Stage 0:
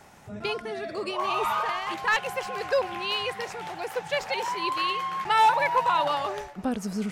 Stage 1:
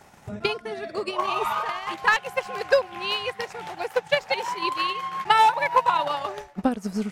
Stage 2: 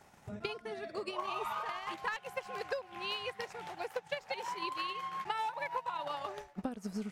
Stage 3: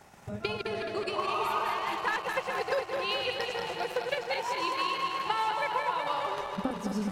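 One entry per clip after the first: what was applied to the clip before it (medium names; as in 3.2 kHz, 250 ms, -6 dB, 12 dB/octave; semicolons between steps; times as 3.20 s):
transient shaper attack +8 dB, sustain -7 dB
compression 12:1, threshold -24 dBFS, peak gain reduction 11.5 dB; trim -9 dB
backward echo that repeats 106 ms, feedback 82%, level -5.5 dB; trim +5.5 dB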